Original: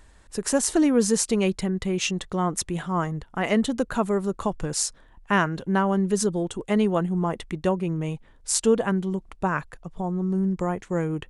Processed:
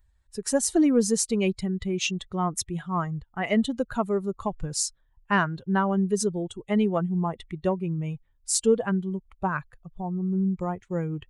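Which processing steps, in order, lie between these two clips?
expander on every frequency bin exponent 1.5; in parallel at -6 dB: saturation -14.5 dBFS, distortion -20 dB; on the sum: trim -2.5 dB

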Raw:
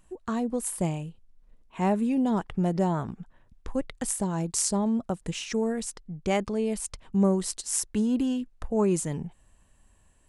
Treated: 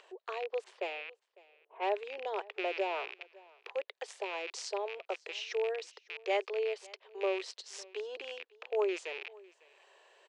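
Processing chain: rattle on loud lows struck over -38 dBFS, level -26 dBFS; steep high-pass 390 Hz 72 dB/octave; 0.64–1.95 s: level-controlled noise filter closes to 630 Hz, open at -26 dBFS; low-pass 4.6 kHz 24 dB/octave; peaking EQ 1.2 kHz -5 dB 1.4 oct; upward compressor, threshold -47 dBFS; delay 552 ms -23.5 dB; 2.56–3.08 s: three bands compressed up and down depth 70%; trim -2 dB

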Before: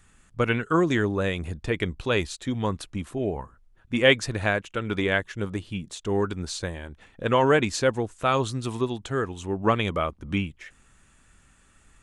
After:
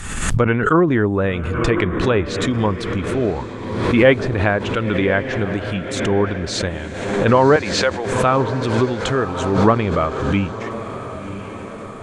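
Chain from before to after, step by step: 7.56–8.12 s: high-pass 600 Hz 12 dB/octave; low-pass that closes with the level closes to 1.6 kHz, closed at -20 dBFS; echo that smears into a reverb 1062 ms, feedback 57%, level -11 dB; swell ahead of each attack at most 45 dB/s; trim +7 dB

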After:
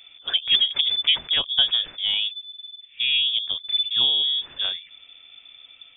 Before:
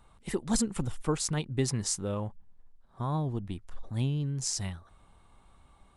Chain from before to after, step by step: frequency inversion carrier 3.5 kHz; trim +8.5 dB

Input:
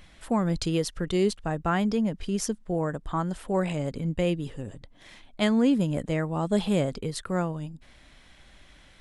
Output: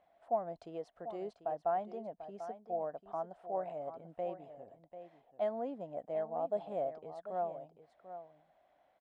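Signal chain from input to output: band-pass filter 690 Hz, Q 8.3; delay 742 ms -11.5 dB; trim +2.5 dB

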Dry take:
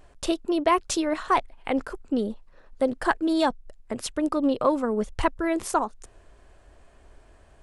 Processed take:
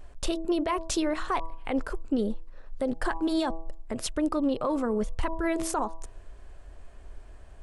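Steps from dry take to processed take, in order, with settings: bass shelf 60 Hz +11.5 dB; de-hum 162.9 Hz, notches 7; peak limiter -19 dBFS, peak gain reduction 10.5 dB

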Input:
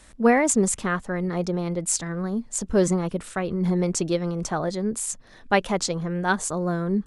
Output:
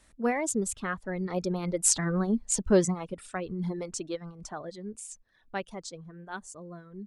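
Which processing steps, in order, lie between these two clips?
Doppler pass-by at 2.16 s, 7 m/s, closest 3.5 m; reverb removal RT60 1.4 s; trim +2.5 dB

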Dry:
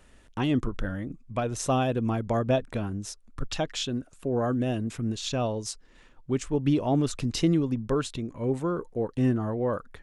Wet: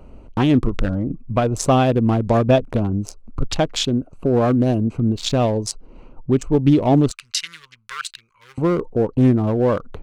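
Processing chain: local Wiener filter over 25 samples; 7.11–8.58 s: inverse Chebyshev high-pass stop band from 740 Hz, stop band 40 dB; in parallel at +3 dB: compression, threshold -38 dBFS, peak gain reduction 17 dB; on the sum: trim +8 dB

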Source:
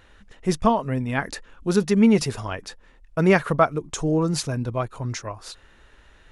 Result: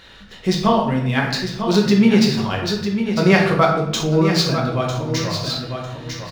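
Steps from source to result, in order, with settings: median filter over 5 samples; on a send: feedback delay 950 ms, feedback 16%, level -10 dB; on the sum: reverberation RT60 0.70 s, pre-delay 5 ms, DRR -1 dB; in parallel at +3 dB: compression, threshold -27 dBFS, peak gain reduction 18 dB; on the sum: high-pass 87 Hz 6 dB/octave; peaking EQ 4.2 kHz +12 dB 1.2 oct; trim -2.5 dB

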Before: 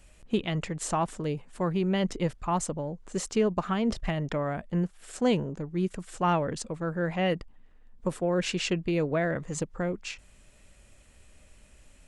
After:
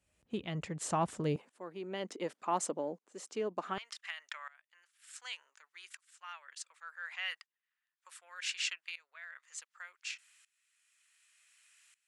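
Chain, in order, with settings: high-pass 63 Hz 24 dB/octave, from 1.36 s 260 Hz, from 3.78 s 1.4 kHz; tremolo saw up 0.67 Hz, depth 90%; trim -1 dB

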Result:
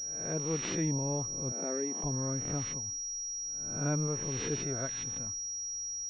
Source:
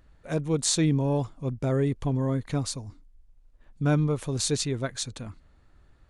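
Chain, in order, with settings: reverse spectral sustain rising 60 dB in 0.67 s; 1.52–2.03 s: elliptic high-pass 180 Hz, stop band 40 dB; class-D stage that switches slowly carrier 5.7 kHz; trim -9 dB

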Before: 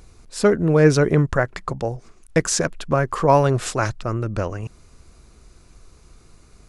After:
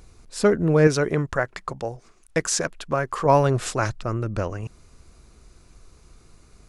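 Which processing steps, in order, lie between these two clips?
0.87–3.26 s: bass shelf 350 Hz -7 dB; trim -2 dB

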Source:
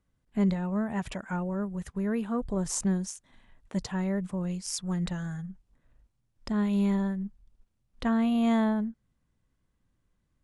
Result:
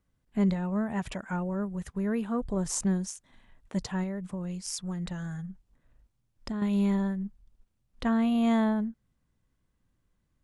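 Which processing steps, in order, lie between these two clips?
4.03–6.62 s: compression, threshold -31 dBFS, peak gain reduction 7.5 dB

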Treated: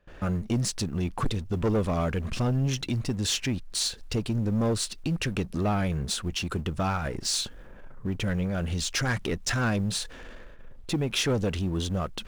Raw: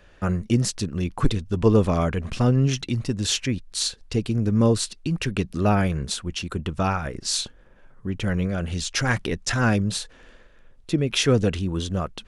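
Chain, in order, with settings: companding laws mixed up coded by mu; gate with hold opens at -39 dBFS; in parallel at +2.5 dB: compression, threshold -29 dBFS, peak gain reduction 16.5 dB; on the sum: saturation -13.5 dBFS, distortion -14 dB; tape noise reduction on one side only decoder only; trim -6 dB

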